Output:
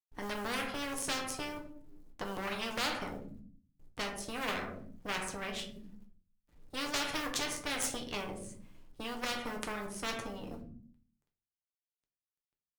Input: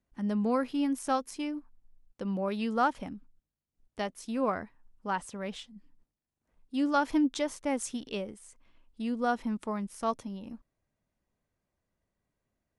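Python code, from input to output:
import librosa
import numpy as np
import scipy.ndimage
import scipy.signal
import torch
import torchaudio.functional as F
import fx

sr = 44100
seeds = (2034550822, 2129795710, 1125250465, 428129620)

y = fx.law_mismatch(x, sr, coded='A')
y = fx.low_shelf(y, sr, hz=380.0, db=11.5)
y = fx.cheby_harmonics(y, sr, harmonics=(6,), levels_db=(-16,), full_scale_db=-12.0)
y = fx.room_shoebox(y, sr, seeds[0], volume_m3=39.0, walls='mixed', distance_m=0.42)
y = fx.spectral_comp(y, sr, ratio=4.0)
y = F.gain(torch.from_numpy(y), -5.5).numpy()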